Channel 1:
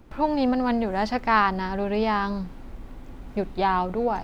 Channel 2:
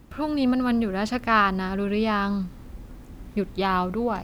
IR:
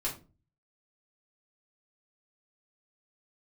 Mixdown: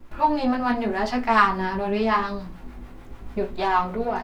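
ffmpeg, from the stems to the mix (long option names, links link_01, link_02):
-filter_complex "[0:a]acrossover=split=560[link_01][link_02];[link_01]aeval=exprs='val(0)*(1-0.7/2+0.7/2*cos(2*PI*6.8*n/s))':channel_layout=same[link_03];[link_02]aeval=exprs='val(0)*(1-0.7/2-0.7/2*cos(2*PI*6.8*n/s))':channel_layout=same[link_04];[link_03][link_04]amix=inputs=2:normalize=0,flanger=delay=16.5:depth=5.1:speed=0.87,volume=0.5dB,asplit=2[link_05][link_06];[link_06]volume=-4.5dB[link_07];[1:a]highpass=frequency=290:width=0.5412,highpass=frequency=290:width=1.3066,asoftclip=type=tanh:threshold=-21dB,adelay=3.8,volume=-7dB[link_08];[2:a]atrim=start_sample=2205[link_09];[link_07][link_09]afir=irnorm=-1:irlink=0[link_10];[link_05][link_08][link_10]amix=inputs=3:normalize=0,equalizer=frequency=1600:width_type=o:width=2.3:gain=4"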